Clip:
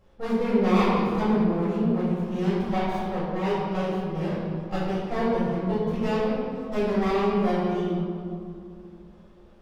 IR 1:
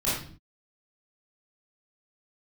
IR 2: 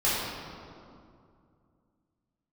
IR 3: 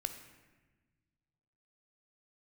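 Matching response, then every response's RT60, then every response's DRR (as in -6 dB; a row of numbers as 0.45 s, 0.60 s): 2; 0.45 s, 2.4 s, 1.3 s; -10.5 dB, -11.0 dB, 8.0 dB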